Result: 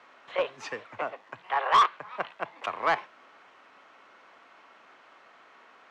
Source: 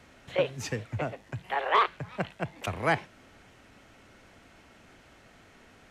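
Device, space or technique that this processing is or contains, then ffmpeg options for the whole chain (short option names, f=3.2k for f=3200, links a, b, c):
intercom: -af "highpass=460,lowpass=4.1k,equalizer=f=1.1k:t=o:w=0.59:g=10,asoftclip=type=tanh:threshold=-14.5dB"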